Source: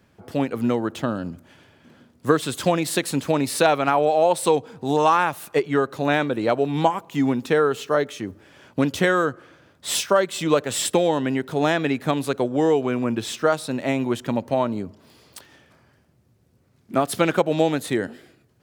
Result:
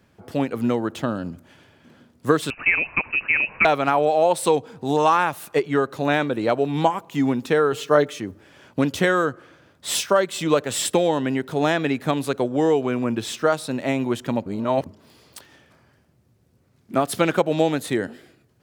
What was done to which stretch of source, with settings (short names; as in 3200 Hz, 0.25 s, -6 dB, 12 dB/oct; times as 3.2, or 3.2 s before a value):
2.5–3.65 inverted band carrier 2800 Hz
7.72–8.2 comb 6.6 ms, depth 74%
14.46–14.86 reverse